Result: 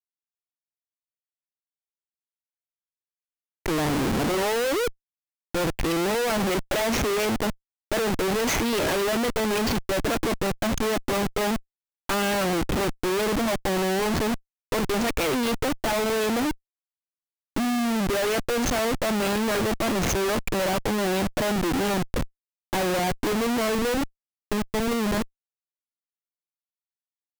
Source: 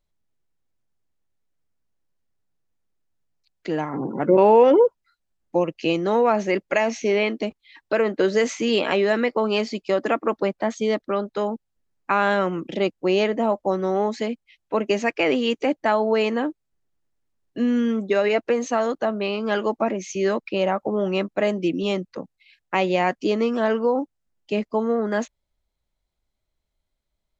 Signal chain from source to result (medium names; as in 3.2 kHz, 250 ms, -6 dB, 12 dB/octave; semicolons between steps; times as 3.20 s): fade out at the end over 6.68 s; Schmitt trigger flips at -34 dBFS